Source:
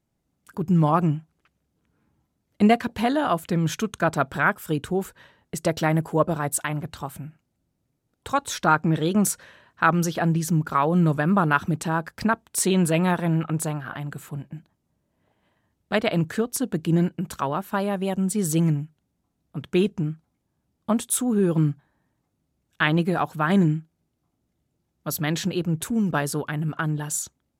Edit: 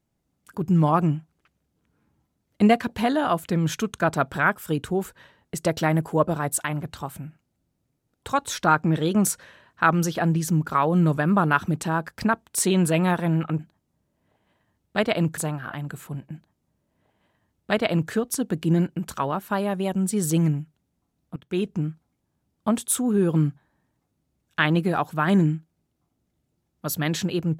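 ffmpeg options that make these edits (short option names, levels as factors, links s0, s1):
-filter_complex "[0:a]asplit=4[s0][s1][s2][s3];[s0]atrim=end=13.592[s4];[s1]atrim=start=14.548:end=16.332[s5];[s2]atrim=start=13.588:end=19.58,asetpts=PTS-STARTPTS,afade=t=out:st=5.988:d=0.004:c=hsin:silence=0.125893[s6];[s3]atrim=start=19.58,asetpts=PTS-STARTPTS,afade=t=in:d=0.43:silence=0.125893[s7];[s4][s5]acrossfade=d=0.004:c1=hsin:c2=hsin[s8];[s6][s7]concat=n=2:v=0:a=1[s9];[s8][s9]acrossfade=d=0.004:c1=hsin:c2=hsin"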